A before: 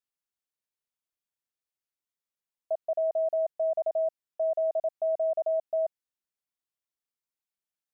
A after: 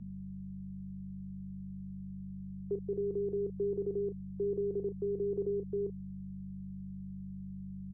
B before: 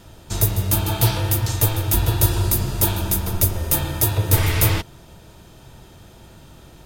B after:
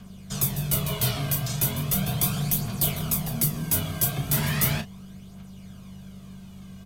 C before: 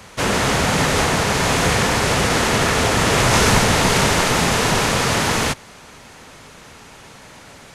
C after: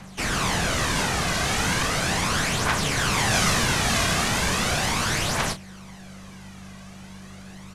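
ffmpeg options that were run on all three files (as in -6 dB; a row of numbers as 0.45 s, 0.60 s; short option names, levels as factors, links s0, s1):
-filter_complex "[0:a]acrossover=split=440|990[s0][s1][s2];[s0]asoftclip=type=tanh:threshold=0.15[s3];[s1]alimiter=level_in=1.06:limit=0.0631:level=0:latency=1,volume=0.944[s4];[s2]aphaser=in_gain=1:out_gain=1:delay=2.3:decay=0.53:speed=0.37:type=triangular[s5];[s3][s4][s5]amix=inputs=3:normalize=0,aeval=exprs='val(0)+0.0158*(sin(2*PI*50*n/s)+sin(2*PI*2*50*n/s)/2+sin(2*PI*3*50*n/s)/3+sin(2*PI*4*50*n/s)/4+sin(2*PI*5*50*n/s)/5)':c=same,afreqshift=-240,asplit=2[s6][s7];[s7]adelay=33,volume=0.299[s8];[s6][s8]amix=inputs=2:normalize=0,volume=0.501"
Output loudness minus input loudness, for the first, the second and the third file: -9.0 LU, -5.5 LU, -6.0 LU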